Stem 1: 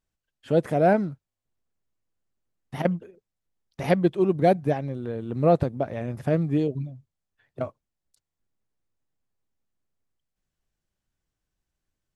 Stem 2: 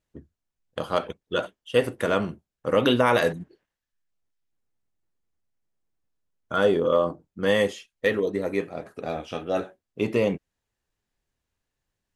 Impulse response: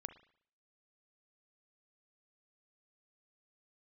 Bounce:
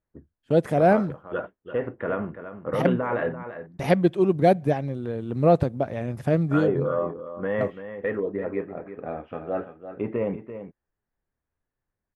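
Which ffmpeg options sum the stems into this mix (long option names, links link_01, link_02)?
-filter_complex "[0:a]agate=range=-21dB:threshold=-43dB:ratio=16:detection=peak,volume=0.5dB,asplit=2[link_01][link_02];[link_02]volume=-16dB[link_03];[1:a]lowpass=frequency=1900:width=0.5412,lowpass=frequency=1900:width=1.3066,alimiter=limit=-14.5dB:level=0:latency=1:release=16,volume=-2.5dB,asplit=2[link_04][link_05];[link_05]volume=-11dB[link_06];[2:a]atrim=start_sample=2205[link_07];[link_03][link_07]afir=irnorm=-1:irlink=0[link_08];[link_06]aecho=0:1:339:1[link_09];[link_01][link_04][link_08][link_09]amix=inputs=4:normalize=0"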